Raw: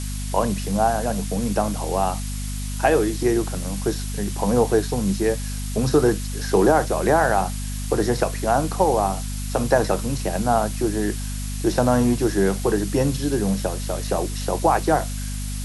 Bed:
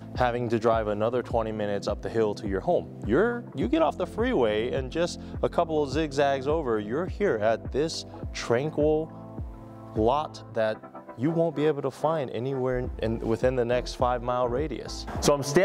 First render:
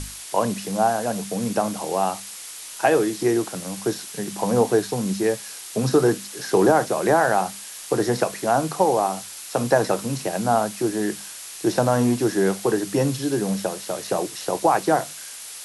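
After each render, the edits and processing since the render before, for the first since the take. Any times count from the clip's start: hum notches 50/100/150/200/250 Hz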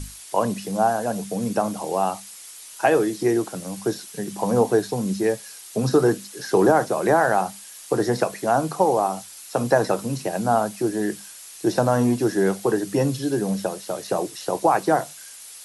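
noise reduction 7 dB, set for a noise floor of -38 dBFS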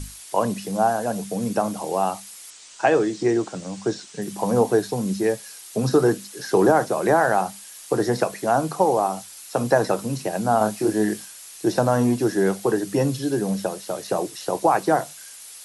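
2.50–4.22 s: steep low-pass 8.3 kHz 48 dB/octave; 10.58–11.25 s: doubling 28 ms -2 dB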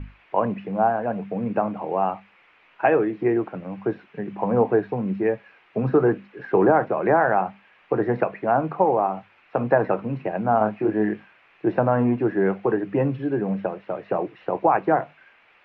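Chebyshev low-pass 2.5 kHz, order 4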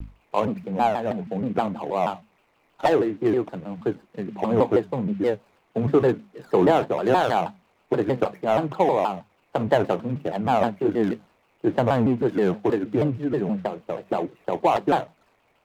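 median filter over 25 samples; vibrato with a chosen wave saw down 6.3 Hz, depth 250 cents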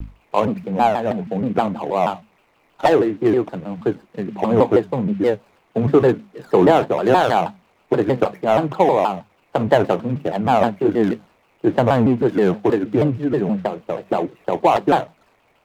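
trim +5 dB

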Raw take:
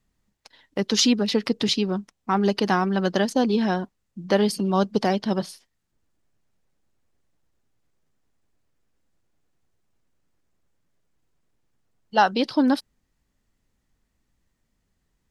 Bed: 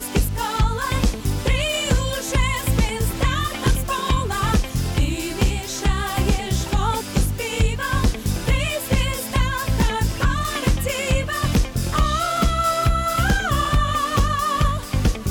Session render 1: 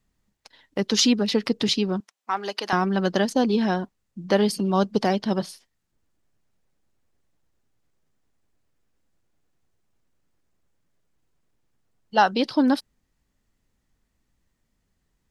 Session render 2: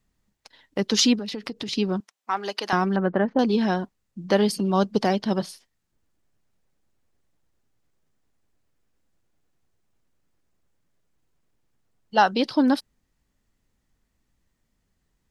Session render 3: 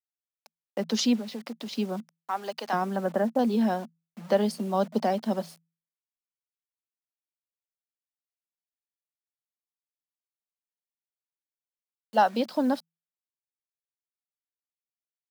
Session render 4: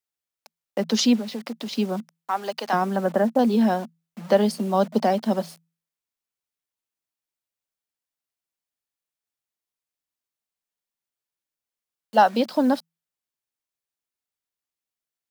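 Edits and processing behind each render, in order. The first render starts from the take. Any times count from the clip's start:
2.00–2.73 s: Bessel high-pass 790 Hz
1.15–1.73 s: compression 10:1, threshold -28 dBFS; 2.96–3.39 s: low-pass 1.9 kHz 24 dB/octave
bit crusher 7-bit; rippled Chebyshev high-pass 160 Hz, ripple 9 dB
trim +5 dB

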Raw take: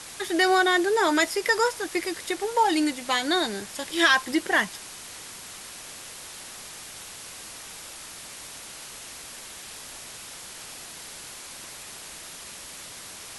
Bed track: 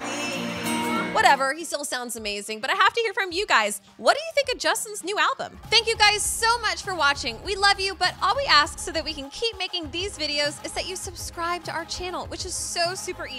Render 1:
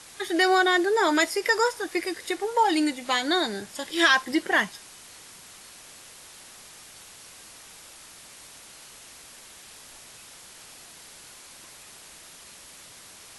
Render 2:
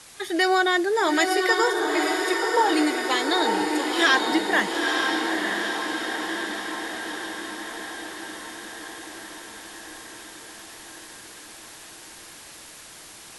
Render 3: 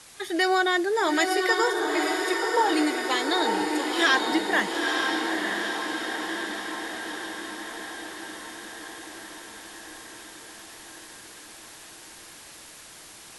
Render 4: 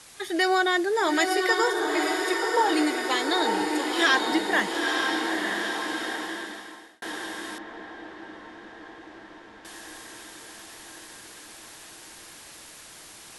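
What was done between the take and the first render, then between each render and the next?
noise print and reduce 6 dB
echo that smears into a reverb 917 ms, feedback 65%, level -3 dB
trim -2 dB
6.07–7.02 s: fade out; 7.58–9.65 s: tape spacing loss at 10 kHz 31 dB

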